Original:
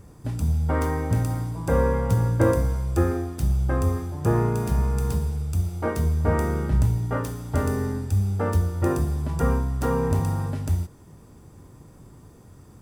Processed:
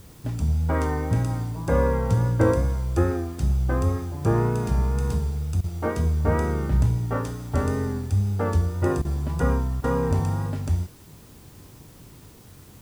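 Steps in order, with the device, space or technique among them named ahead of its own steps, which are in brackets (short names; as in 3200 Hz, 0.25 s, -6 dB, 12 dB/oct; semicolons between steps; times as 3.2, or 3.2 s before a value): worn cassette (LPF 8300 Hz 12 dB/oct; wow and flutter; level dips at 5.61/9.02/9.81, 28 ms -16 dB; white noise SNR 31 dB)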